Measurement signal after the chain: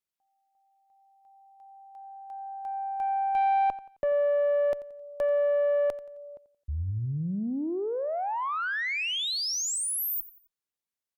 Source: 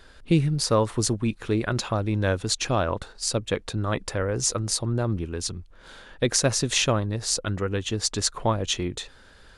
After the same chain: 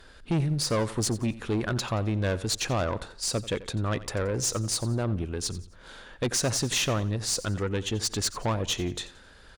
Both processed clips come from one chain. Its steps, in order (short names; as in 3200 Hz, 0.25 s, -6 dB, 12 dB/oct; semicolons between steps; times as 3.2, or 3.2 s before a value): tube stage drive 21 dB, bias 0.2; feedback echo 88 ms, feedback 38%, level -17 dB